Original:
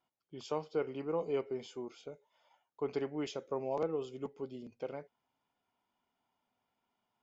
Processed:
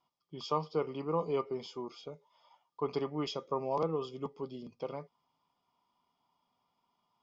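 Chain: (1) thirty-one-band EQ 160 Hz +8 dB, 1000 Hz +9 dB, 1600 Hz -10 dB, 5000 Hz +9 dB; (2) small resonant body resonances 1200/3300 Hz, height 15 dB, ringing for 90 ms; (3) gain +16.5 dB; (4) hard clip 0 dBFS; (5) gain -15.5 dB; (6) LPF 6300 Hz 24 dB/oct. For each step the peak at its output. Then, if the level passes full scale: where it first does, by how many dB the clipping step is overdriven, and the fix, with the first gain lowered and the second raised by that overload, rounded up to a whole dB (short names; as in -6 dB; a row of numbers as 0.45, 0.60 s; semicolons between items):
-21.0, -19.5, -3.0, -3.0, -18.5, -18.5 dBFS; no overload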